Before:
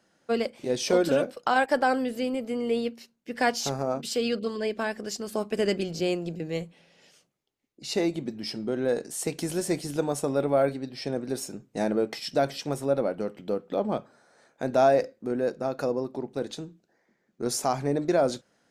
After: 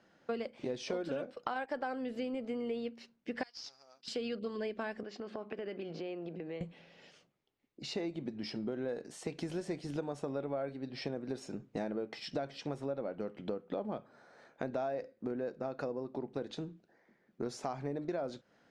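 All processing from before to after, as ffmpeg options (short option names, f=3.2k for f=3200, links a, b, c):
-filter_complex "[0:a]asettb=1/sr,asplit=3[a][b][c];[a]atrim=end=3.434[d];[b]atrim=start=3.43:end=4.08,asetpts=PTS-STARTPTS,afade=t=in:d=0.004:c=qsin,afade=t=out:st=0.646:d=0.004:c=qsin,bandpass=f=5.1k:t=q:w=7,acrusher=bits=3:mode=log:mix=0:aa=0.000001[e];[c]atrim=start=4.076[f];[d][e]acrossfade=d=0.004:c1=hsin:c2=qsin[g];[g][f]acrossfade=d=0.004:c1=qsin:c2=hsin,asettb=1/sr,asplit=3[h][i][j];[h]atrim=end=5.034[k];[i]atrim=start=5.03:end=6.61,asetpts=PTS-STARTPTS,afade=t=in:d=0.004:c=qsin,afade=t=out:st=1.576:d=0.004:c=qsin,highpass=250,lowpass=3k,acompressor=threshold=-40dB:ratio=4:attack=3.2:release=140:knee=1:detection=peak[l];[j]atrim=start=6.606[m];[k][l]acrossfade=d=0.004:c1=hsin:c2=qsin[n];[n][m]acrossfade=d=0.004:c1=qsin:c2=hsin,acompressor=threshold=-36dB:ratio=6,lowpass=5.3k,bass=f=250:g=0,treble=f=4k:g=-5,volume=1dB"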